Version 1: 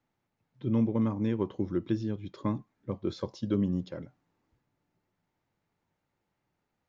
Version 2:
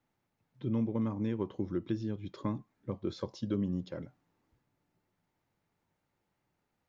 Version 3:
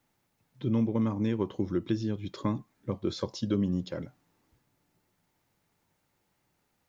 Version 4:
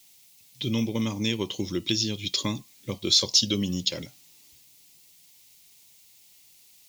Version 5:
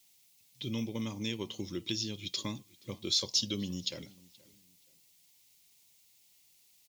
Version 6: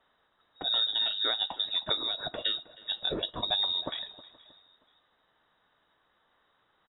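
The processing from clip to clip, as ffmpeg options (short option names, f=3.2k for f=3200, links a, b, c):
-af "acompressor=threshold=-36dB:ratio=1.5"
-af "highshelf=f=3.6k:g=8,volume=4.5dB"
-af "aexciter=amount=6:drive=9.2:freq=2.3k"
-filter_complex "[0:a]asplit=2[a][b];[b]adelay=475,lowpass=f=3.2k:p=1,volume=-22.5dB,asplit=2[c][d];[d]adelay=475,lowpass=f=3.2k:p=1,volume=0.31[e];[a][c][e]amix=inputs=3:normalize=0,volume=-9dB"
-filter_complex "[0:a]lowpass=f=3.3k:t=q:w=0.5098,lowpass=f=3.3k:t=q:w=0.6013,lowpass=f=3.3k:t=q:w=0.9,lowpass=f=3.3k:t=q:w=2.563,afreqshift=-3900,asplit=2[a][b];[b]adelay=315,lowpass=f=2k:p=1,volume=-17.5dB,asplit=2[c][d];[d]adelay=315,lowpass=f=2k:p=1,volume=0.37,asplit=2[e][f];[f]adelay=315,lowpass=f=2k:p=1,volume=0.37[g];[a][c][e][g]amix=inputs=4:normalize=0,volume=7dB"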